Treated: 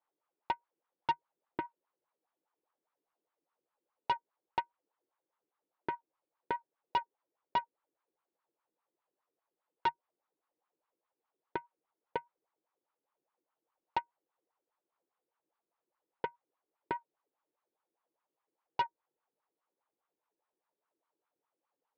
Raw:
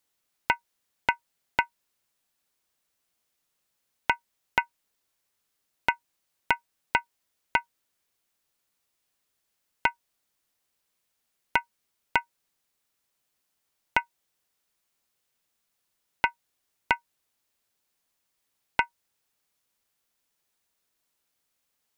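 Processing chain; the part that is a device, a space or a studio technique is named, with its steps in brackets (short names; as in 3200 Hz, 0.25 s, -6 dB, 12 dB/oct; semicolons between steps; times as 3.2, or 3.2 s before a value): wah-wah guitar rig (wah 4.9 Hz 330–1200 Hz, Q 3.9; tube stage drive 36 dB, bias 0.6; speaker cabinet 100–4200 Hz, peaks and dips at 150 Hz +7 dB, 320 Hz +5 dB, 490 Hz +5 dB, 880 Hz +4 dB); gain +8 dB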